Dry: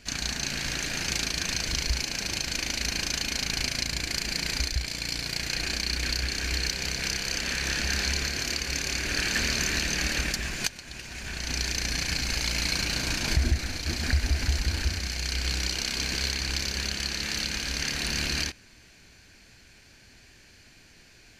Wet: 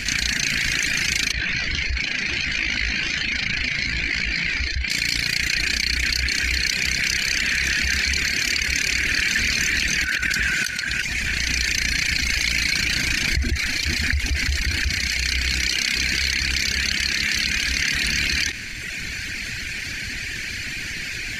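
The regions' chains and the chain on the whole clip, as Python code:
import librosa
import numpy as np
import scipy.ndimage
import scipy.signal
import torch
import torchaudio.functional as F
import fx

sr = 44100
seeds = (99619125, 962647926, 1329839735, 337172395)

y = fx.chain(x, sr, fx.lowpass(hz=3500.0, slope=12),
    fx.detune_double(cents=24), at=(1.32, 4.9))
y = fx.chain(y, sr, fx.peak_eq(hz=1500.0, db=13.5, octaves=0.21),
    fx.over_compress(threshold_db=-29.0, ratio=-0.5),
    fx.highpass(hz=42.0, slope=12), at=(10.04, 11.02))
y = fx.dereverb_blind(y, sr, rt60_s=0.89)
y = fx.graphic_eq(y, sr, hz=(500, 1000, 2000), db=(-7, -8, 11))
y = fx.env_flatten(y, sr, amount_pct=70)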